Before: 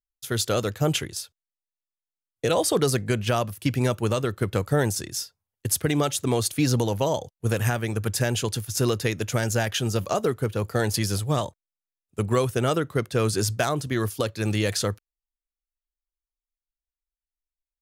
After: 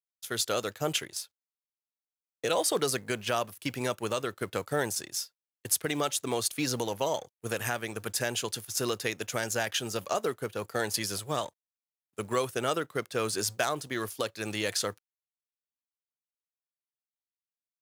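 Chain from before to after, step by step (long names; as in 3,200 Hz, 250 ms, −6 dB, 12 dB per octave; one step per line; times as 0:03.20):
mu-law and A-law mismatch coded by A
high-pass filter 530 Hz 6 dB per octave
level −2 dB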